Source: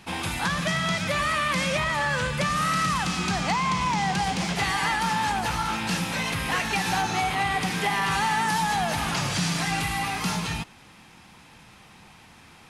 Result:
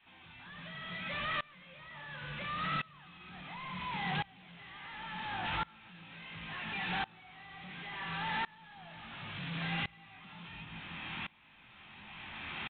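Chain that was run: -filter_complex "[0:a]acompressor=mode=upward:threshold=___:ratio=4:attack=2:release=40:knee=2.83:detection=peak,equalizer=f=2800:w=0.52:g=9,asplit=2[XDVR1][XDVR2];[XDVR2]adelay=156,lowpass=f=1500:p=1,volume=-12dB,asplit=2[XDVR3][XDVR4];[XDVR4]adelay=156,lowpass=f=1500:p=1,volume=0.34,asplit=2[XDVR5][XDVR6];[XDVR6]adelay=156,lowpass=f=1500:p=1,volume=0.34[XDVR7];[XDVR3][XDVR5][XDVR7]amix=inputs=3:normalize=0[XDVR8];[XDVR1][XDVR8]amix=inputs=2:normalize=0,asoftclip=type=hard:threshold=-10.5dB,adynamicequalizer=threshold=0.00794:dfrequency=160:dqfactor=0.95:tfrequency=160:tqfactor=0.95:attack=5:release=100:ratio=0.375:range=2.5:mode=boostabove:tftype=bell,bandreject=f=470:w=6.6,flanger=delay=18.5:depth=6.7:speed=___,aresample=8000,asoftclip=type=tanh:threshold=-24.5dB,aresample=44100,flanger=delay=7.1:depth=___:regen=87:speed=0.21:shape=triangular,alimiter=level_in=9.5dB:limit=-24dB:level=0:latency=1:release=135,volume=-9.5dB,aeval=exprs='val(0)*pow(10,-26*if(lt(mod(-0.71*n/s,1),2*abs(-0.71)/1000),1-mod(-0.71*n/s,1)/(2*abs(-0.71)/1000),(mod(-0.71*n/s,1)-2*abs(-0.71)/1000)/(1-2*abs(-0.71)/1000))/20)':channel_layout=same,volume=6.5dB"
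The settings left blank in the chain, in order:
-37dB, 1.4, 8.5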